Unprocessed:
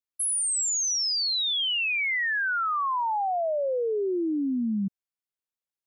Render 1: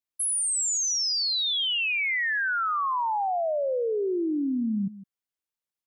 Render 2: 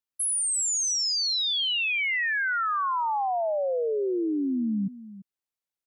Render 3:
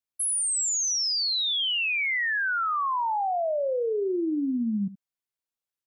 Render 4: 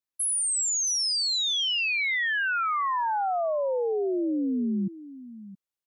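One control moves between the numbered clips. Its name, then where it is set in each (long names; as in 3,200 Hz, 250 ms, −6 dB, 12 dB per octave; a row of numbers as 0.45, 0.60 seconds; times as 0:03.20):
single-tap delay, delay time: 157, 339, 73, 670 milliseconds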